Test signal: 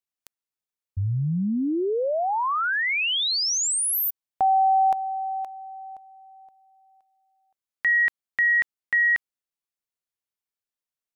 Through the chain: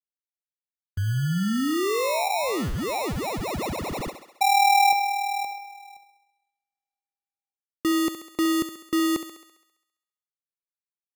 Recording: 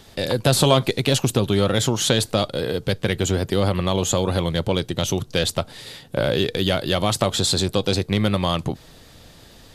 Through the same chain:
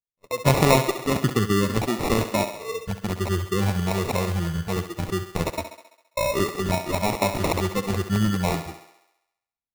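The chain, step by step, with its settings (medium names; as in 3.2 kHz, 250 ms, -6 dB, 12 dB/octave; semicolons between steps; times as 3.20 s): local Wiener filter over 15 samples; spectral noise reduction 21 dB; gate -39 dBFS, range -36 dB; treble shelf 7.7 kHz -4.5 dB; sample-and-hold 28×; thinning echo 67 ms, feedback 62%, high-pass 260 Hz, level -9.5 dB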